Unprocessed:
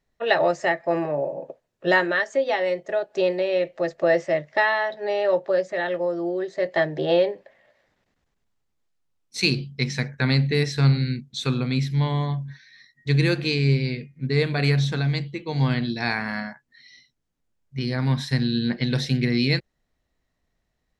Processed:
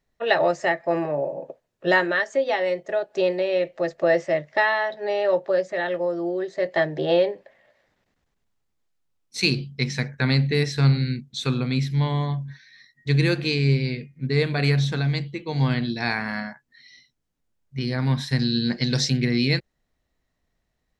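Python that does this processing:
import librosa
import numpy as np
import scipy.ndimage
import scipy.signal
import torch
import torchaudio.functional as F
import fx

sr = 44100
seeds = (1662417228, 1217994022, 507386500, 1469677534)

y = fx.band_shelf(x, sr, hz=5900.0, db=11.5, octaves=1.0, at=(18.39, 19.1))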